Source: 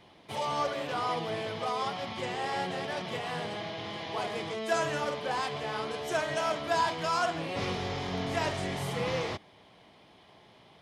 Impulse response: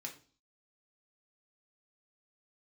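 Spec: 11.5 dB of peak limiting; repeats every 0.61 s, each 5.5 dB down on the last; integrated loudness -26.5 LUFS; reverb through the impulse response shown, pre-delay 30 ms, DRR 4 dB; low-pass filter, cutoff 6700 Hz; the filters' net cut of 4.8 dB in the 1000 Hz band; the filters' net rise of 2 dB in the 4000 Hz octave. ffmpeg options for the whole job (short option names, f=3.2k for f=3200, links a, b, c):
-filter_complex "[0:a]lowpass=6.7k,equalizer=f=1k:t=o:g=-6.5,equalizer=f=4k:t=o:g=3.5,alimiter=level_in=6dB:limit=-24dB:level=0:latency=1,volume=-6dB,aecho=1:1:610|1220|1830|2440|3050|3660|4270:0.531|0.281|0.149|0.079|0.0419|0.0222|0.0118,asplit=2[a][b];[1:a]atrim=start_sample=2205,adelay=30[c];[b][c]afir=irnorm=-1:irlink=0,volume=-1.5dB[d];[a][d]amix=inputs=2:normalize=0,volume=9.5dB"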